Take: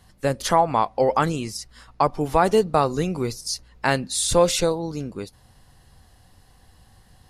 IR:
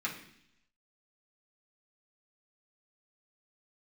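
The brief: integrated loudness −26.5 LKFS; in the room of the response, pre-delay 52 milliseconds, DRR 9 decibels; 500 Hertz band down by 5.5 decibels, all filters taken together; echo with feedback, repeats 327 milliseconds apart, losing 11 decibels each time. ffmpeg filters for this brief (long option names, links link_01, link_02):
-filter_complex "[0:a]equalizer=frequency=500:width_type=o:gain=-6.5,aecho=1:1:327|654|981:0.282|0.0789|0.0221,asplit=2[link_01][link_02];[1:a]atrim=start_sample=2205,adelay=52[link_03];[link_02][link_03]afir=irnorm=-1:irlink=0,volume=-13.5dB[link_04];[link_01][link_04]amix=inputs=2:normalize=0,volume=-2.5dB"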